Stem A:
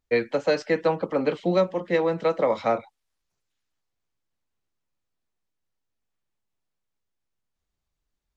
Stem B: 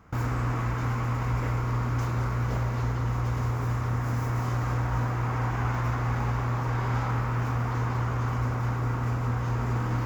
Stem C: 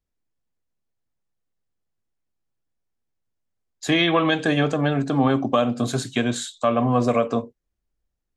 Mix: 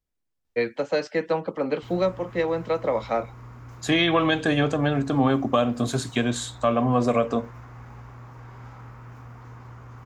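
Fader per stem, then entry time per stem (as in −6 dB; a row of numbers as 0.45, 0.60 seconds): −2.0, −15.5, −1.5 decibels; 0.45, 1.70, 0.00 seconds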